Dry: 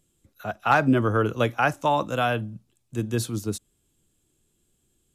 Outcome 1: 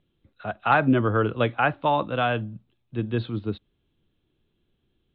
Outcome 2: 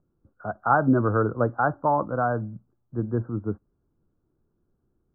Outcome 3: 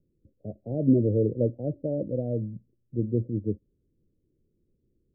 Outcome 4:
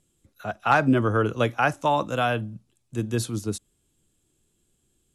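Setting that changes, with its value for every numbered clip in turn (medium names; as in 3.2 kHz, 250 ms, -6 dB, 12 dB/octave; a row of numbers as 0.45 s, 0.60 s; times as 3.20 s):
steep low-pass, frequency: 3.9 kHz, 1.5 kHz, 570 Hz, 12 kHz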